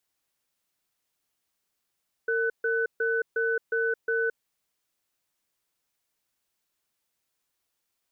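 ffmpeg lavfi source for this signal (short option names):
-f lavfi -i "aevalsrc='0.0501*(sin(2*PI*456*t)+sin(2*PI*1500*t))*clip(min(mod(t,0.36),0.22-mod(t,0.36))/0.005,0,1)':d=2.04:s=44100"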